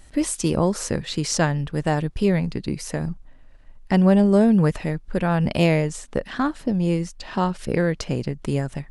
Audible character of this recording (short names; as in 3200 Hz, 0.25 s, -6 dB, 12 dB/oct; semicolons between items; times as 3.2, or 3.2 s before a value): noise floor -47 dBFS; spectral tilt -6.5 dB/oct